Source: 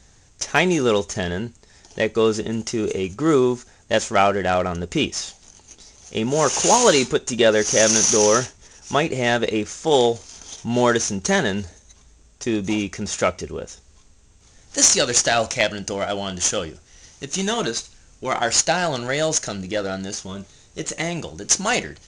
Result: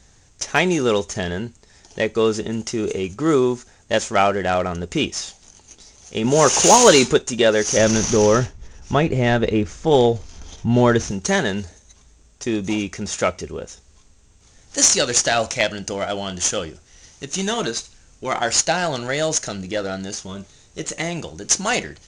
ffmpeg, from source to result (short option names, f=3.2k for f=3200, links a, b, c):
-filter_complex "[0:a]asettb=1/sr,asplit=3[a][b][c];[a]atrim=end=6.244[d];[b]atrim=start=6.24:end=7.22,asetpts=PTS-STARTPTS,afade=t=in:d=0.004:c=qsin,afade=t=out:st=0.976:d=0.004:c=qsin,acontrast=22[e];[c]atrim=start=7.216[f];[d][e]acrossfade=d=0.004:c1=hsin:c2=qsin[g];[g][f]acrossfade=d=0.004:c1=qsin:c2=hsin,asettb=1/sr,asplit=3[h][i][j];[h]atrim=end=7.774[k];[i]atrim=start=7.77:end=11.11,asetpts=PTS-STARTPTS,afade=t=in:d=0.004:c=qsin,afade=t=out:st=3.336:d=0.004:c=qsin,aemphasis=mode=reproduction:type=bsi[l];[j]atrim=start=11.106[m];[k][l]acrossfade=d=0.004:c1=hsin:c2=qsin[n];[n][m]acrossfade=d=0.004:c1=qsin:c2=hsin"